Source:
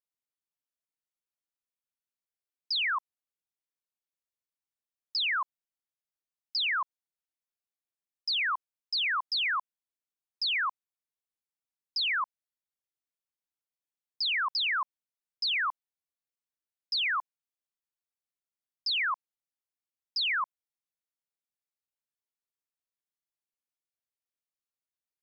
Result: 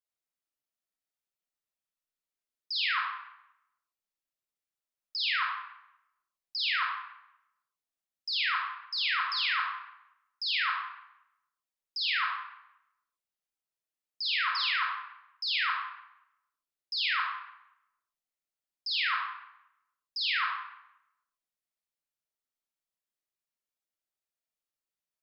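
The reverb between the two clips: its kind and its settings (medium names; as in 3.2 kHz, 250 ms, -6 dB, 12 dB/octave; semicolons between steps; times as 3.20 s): algorithmic reverb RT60 0.83 s, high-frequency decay 0.8×, pre-delay 5 ms, DRR -3 dB; trim -4.5 dB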